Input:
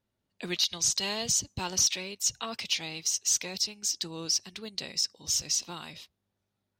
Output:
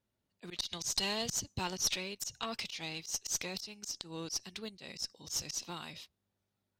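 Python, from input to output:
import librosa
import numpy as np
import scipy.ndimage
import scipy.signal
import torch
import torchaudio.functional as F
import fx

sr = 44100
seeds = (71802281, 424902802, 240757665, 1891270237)

y = fx.auto_swell(x, sr, attack_ms=129.0)
y = fx.cheby_harmonics(y, sr, harmonics=(2,), levels_db=(-10,), full_scale_db=-17.0)
y = y * 10.0 ** (-2.5 / 20.0)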